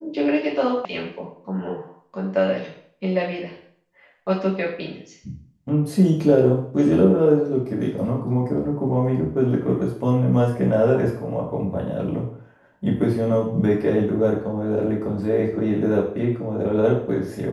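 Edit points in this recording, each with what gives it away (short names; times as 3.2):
0.85 sound cut off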